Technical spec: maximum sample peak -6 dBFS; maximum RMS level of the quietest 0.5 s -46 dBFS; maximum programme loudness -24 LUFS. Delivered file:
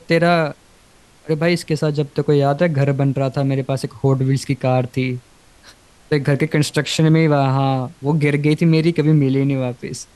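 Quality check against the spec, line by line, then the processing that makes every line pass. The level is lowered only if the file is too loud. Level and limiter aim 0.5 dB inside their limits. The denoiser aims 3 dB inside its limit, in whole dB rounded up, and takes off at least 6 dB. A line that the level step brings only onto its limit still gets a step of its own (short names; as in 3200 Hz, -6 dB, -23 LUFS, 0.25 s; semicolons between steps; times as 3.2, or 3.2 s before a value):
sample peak -4.0 dBFS: fail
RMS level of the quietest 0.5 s -50 dBFS: OK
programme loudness -18.0 LUFS: fail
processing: gain -6.5 dB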